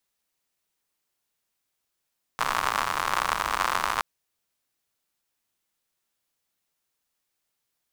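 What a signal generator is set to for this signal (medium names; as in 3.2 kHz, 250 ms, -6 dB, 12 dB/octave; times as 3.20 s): rain from filtered ticks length 1.62 s, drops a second 100, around 1.1 kHz, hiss -15 dB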